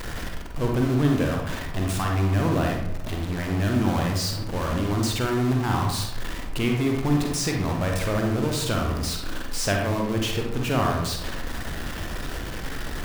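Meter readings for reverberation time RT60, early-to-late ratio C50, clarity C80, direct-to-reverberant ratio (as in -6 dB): 0.85 s, 2.5 dB, 6.0 dB, 0.5 dB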